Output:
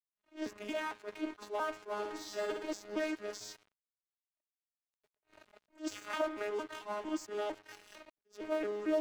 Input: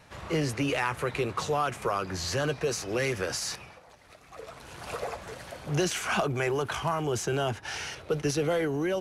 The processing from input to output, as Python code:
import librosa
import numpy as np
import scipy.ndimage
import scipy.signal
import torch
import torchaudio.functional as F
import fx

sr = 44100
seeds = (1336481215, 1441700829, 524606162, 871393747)

y = fx.vocoder_arp(x, sr, chord='bare fifth', root=56, every_ms=227)
y = scipy.signal.sosfilt(scipy.signal.butter(2, 370.0, 'highpass', fs=sr, output='sos'), y)
y = fx.high_shelf(y, sr, hz=5300.0, db=8.5)
y = fx.over_compress(y, sr, threshold_db=-48.0, ratio=-1.0, at=(7.75, 8.17))
y = fx.comb_fb(y, sr, f0_hz=610.0, decay_s=0.19, harmonics='all', damping=0.0, mix_pct=40)
y = fx.rev_spring(y, sr, rt60_s=2.0, pass_ms=(43,), chirp_ms=75, drr_db=13.5)
y = np.sign(y) * np.maximum(np.abs(y) - 10.0 ** (-48.5 / 20.0), 0.0)
y = fx.room_flutter(y, sr, wall_m=10.3, rt60_s=0.7, at=(1.98, 2.72), fade=0.02)
y = fx.quant_dither(y, sr, seeds[0], bits=6, dither='none', at=(4.41, 5.16))
y = fx.attack_slew(y, sr, db_per_s=270.0)
y = F.gain(torch.from_numpy(y), 1.0).numpy()